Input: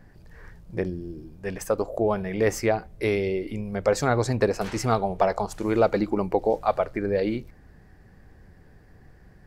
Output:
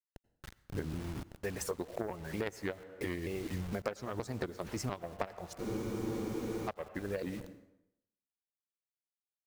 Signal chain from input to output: trilling pitch shifter -2.5 st, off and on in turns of 0.233 s; added harmonics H 2 -23 dB, 3 -10 dB, 5 -28 dB, 8 -38 dB, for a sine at -8 dBFS; harmonic-percussive split percussive +9 dB; HPF 71 Hz 12 dB/oct; requantised 8-bit, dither none; reverb RT60 0.80 s, pre-delay 78 ms, DRR 19.5 dB; compressor 12:1, threshold -37 dBFS, peak gain reduction 26.5 dB; low shelf 110 Hz +10.5 dB; spectral freeze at 5.61, 1.07 s; core saturation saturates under 350 Hz; gain +3 dB

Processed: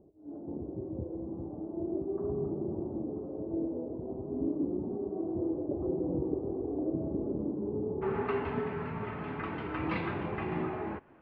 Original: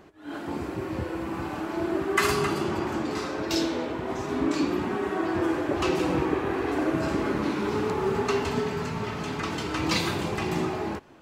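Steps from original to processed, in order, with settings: inverse Chebyshev low-pass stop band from 2000 Hz, stop band 60 dB, from 8.01 s stop band from 7500 Hz; gain -6 dB

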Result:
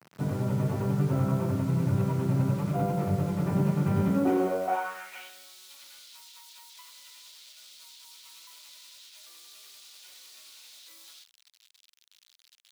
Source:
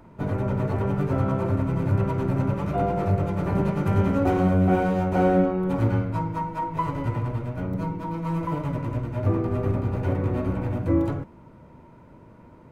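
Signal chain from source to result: bit-crush 7-bit; high-pass sweep 140 Hz -> 3800 Hz, 4.08–5.34; gain -6.5 dB

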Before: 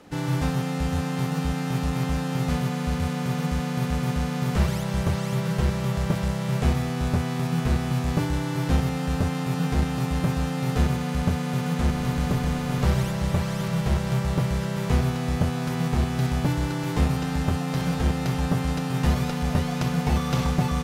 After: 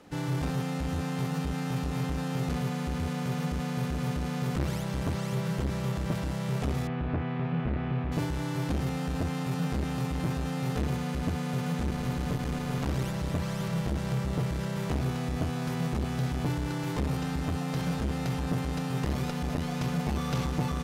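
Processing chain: 6.87–8.12 LPF 2800 Hz 24 dB/oct; core saturation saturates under 310 Hz; gain -4 dB

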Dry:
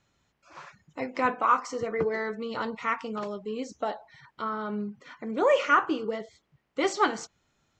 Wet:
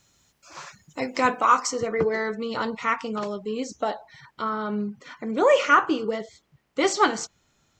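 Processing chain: tone controls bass +1 dB, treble +14 dB, from 1.69 s treble +5 dB; gain +4 dB

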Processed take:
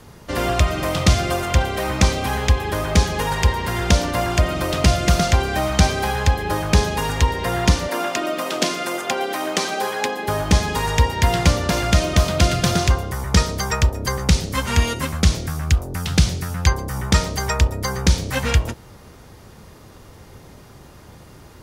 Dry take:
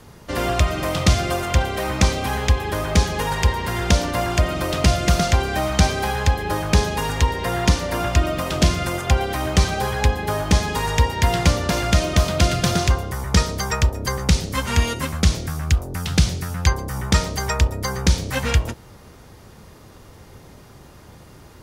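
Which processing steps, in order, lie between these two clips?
7.88–10.28 HPF 240 Hz 24 dB/oct; gain +1 dB

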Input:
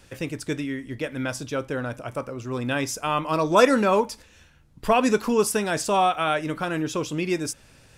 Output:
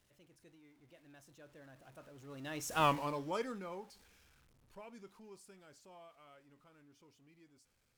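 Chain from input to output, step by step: zero-crossing step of -31.5 dBFS; Doppler pass-by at 2.84, 31 m/s, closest 2.2 m; gain -5.5 dB

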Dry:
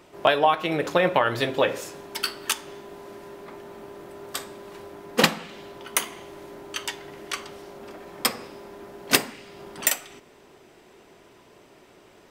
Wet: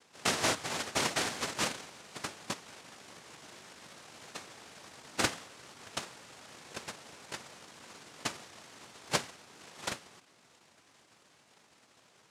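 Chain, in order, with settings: noise vocoder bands 1; high shelf 2000 Hz -9.5 dB; gain -5.5 dB

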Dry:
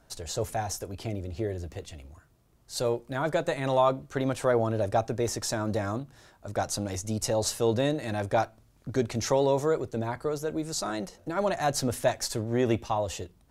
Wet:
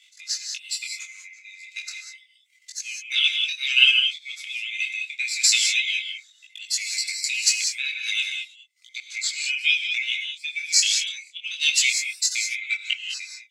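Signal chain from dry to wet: band-swap scrambler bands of 2000 Hz; auto swell 0.543 s; reverb removal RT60 1 s; transient shaper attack +9 dB, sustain -8 dB; elliptic high-pass 1300 Hz, stop band 60 dB; band shelf 5200 Hz +13.5 dB; non-linear reverb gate 0.22 s rising, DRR 3.5 dB; detuned doubles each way 11 cents; gain +3.5 dB

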